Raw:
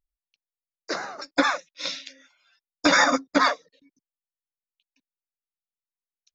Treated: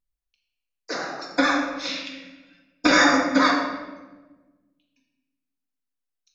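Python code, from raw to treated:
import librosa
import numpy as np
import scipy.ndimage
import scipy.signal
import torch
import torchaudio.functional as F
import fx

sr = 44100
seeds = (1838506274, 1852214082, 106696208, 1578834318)

y = fx.graphic_eq_15(x, sr, hz=(100, 250, 2500, 6300), db=(11, 7, 8, -4), at=(1.88, 2.87))
y = fx.room_shoebox(y, sr, seeds[0], volume_m3=810.0, walls='mixed', distance_m=1.9)
y = y * 10.0 ** (-2.5 / 20.0)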